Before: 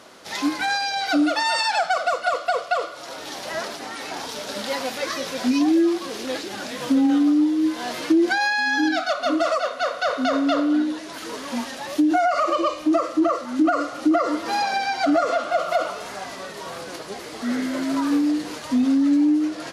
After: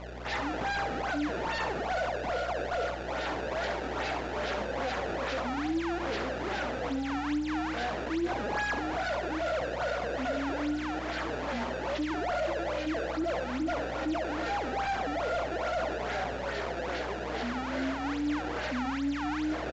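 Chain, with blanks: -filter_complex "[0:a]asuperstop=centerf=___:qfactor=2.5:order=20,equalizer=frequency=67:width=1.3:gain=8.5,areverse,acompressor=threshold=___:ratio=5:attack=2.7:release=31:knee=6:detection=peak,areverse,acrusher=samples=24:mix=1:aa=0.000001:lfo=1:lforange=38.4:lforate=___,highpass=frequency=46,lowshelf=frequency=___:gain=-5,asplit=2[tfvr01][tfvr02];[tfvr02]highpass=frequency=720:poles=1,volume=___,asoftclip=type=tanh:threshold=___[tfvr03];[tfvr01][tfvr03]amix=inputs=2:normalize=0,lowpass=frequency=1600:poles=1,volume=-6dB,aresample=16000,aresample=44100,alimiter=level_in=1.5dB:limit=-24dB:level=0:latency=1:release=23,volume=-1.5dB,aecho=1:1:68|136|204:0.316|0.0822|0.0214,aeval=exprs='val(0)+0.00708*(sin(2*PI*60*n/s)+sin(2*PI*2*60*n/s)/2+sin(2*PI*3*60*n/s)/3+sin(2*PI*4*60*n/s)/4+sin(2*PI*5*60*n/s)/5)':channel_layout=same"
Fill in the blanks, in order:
1100, -30dB, 2.4, 320, 15dB, -20dB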